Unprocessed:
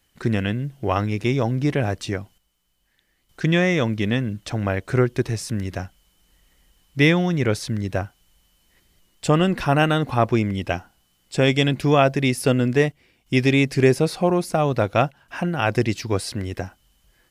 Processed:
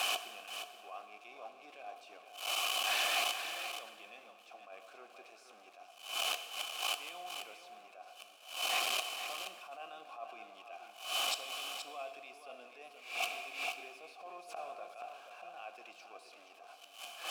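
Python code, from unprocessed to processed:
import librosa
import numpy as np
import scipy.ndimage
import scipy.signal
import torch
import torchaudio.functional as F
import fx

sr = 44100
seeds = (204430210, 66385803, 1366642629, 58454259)

p1 = x + 0.5 * 10.0 ** (-24.0 / 20.0) * np.sign(x)
p2 = scipy.signal.sosfilt(scipy.signal.butter(4, 210.0, 'highpass', fs=sr, output='sos'), p1)
p3 = fx.tilt_eq(p2, sr, slope=4.0)
p4 = fx.over_compress(p3, sr, threshold_db=-24.0, ratio=-1.0)
p5 = p3 + F.gain(torch.from_numpy(p4), 0.0).numpy()
p6 = fx.gate_flip(p5, sr, shuts_db=-5.0, range_db=-29)
p7 = fx.vowel_filter(p6, sr, vowel='a')
p8 = p7 + 10.0 ** (-9.0 / 20.0) * np.pad(p7, (int(476 * sr / 1000.0), 0))[:len(p7)]
p9 = fx.rev_plate(p8, sr, seeds[0], rt60_s=1.9, hf_ratio=0.75, predelay_ms=0, drr_db=9.0)
p10 = fx.attack_slew(p9, sr, db_per_s=110.0)
y = F.gain(torch.from_numpy(p10), 7.0).numpy()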